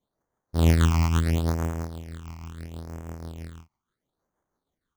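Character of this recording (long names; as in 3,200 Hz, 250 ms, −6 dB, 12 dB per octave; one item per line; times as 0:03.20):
tremolo triangle 6.2 Hz, depth 45%
aliases and images of a low sample rate 2,600 Hz, jitter 0%
phaser sweep stages 8, 0.74 Hz, lowest notch 480–4,100 Hz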